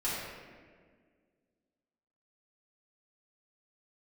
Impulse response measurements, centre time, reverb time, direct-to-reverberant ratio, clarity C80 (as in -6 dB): 0.107 s, 1.8 s, -10.5 dB, 0.5 dB